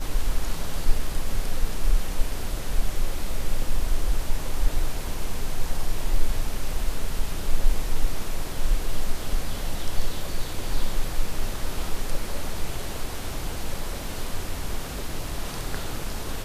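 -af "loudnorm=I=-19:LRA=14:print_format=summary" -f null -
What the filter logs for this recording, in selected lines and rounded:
Input Integrated:    -32.6 LUFS
Input True Peak:      -5.2 dBTP
Input LRA:             2.2 LU
Input Threshold:     -42.6 LUFS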